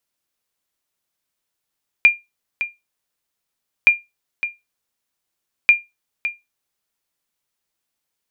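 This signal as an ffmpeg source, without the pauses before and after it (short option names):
-f lavfi -i "aevalsrc='0.75*(sin(2*PI*2400*mod(t,1.82))*exp(-6.91*mod(t,1.82)/0.2)+0.251*sin(2*PI*2400*max(mod(t,1.82)-0.56,0))*exp(-6.91*max(mod(t,1.82)-0.56,0)/0.2))':d=5.46:s=44100"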